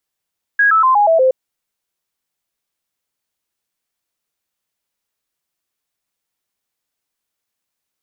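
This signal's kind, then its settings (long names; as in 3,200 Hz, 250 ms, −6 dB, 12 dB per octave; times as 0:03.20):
stepped sweep 1,650 Hz down, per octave 3, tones 6, 0.12 s, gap 0.00 s −8.5 dBFS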